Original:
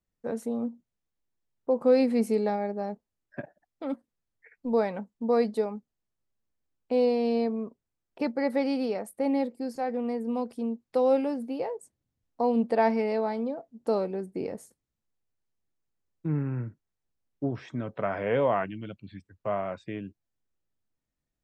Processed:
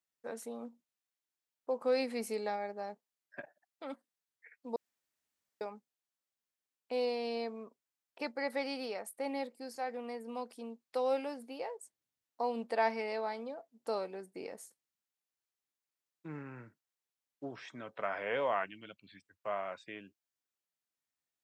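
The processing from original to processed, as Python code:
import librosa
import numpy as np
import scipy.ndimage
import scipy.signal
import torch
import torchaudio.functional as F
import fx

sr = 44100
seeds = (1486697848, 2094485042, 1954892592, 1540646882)

y = fx.edit(x, sr, fx.room_tone_fill(start_s=4.76, length_s=0.85), tone=tone)
y = fx.highpass(y, sr, hz=1400.0, slope=6)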